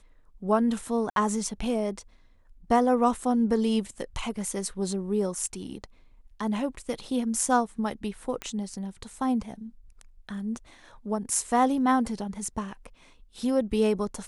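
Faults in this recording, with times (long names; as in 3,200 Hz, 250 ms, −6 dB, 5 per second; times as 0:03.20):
0:01.10–0:01.16: drop-out 62 ms
0:08.42: click −18 dBFS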